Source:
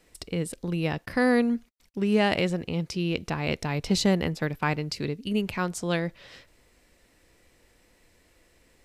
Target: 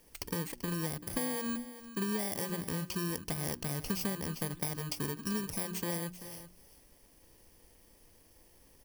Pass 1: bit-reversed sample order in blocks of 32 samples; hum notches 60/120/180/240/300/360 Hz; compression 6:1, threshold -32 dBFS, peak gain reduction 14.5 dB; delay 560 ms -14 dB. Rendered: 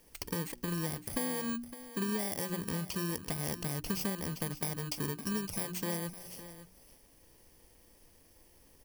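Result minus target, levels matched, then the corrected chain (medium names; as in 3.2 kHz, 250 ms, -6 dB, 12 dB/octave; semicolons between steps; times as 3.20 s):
echo 173 ms late
bit-reversed sample order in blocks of 32 samples; hum notches 60/120/180/240/300/360 Hz; compression 6:1, threshold -32 dBFS, peak gain reduction 14.5 dB; delay 387 ms -14 dB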